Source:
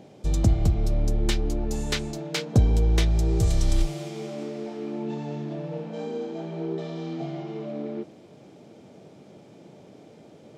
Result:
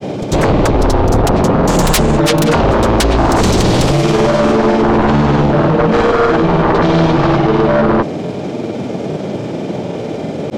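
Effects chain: treble shelf 6.2 kHz -10 dB; in parallel at 0 dB: compression, threshold -30 dBFS, peak gain reduction 16 dB; on the sum: sine folder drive 20 dB, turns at -6.5 dBFS; granulator, grains 20 per s, pitch spread up and down by 0 st

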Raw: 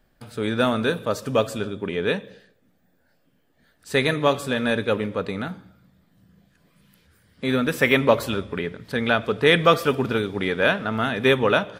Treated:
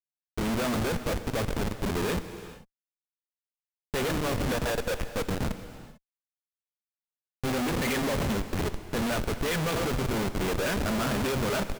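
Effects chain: median filter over 3 samples; 4.51–5.12 s: Chebyshev high-pass 460 Hz, order 6; 7.47–7.92 s: waveshaping leveller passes 1; flange 1.4 Hz, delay 0.4 ms, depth 6.4 ms, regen +45%; delay 144 ms -20 dB; Schmitt trigger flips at -30 dBFS; gated-style reverb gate 470 ms flat, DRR 10.5 dB

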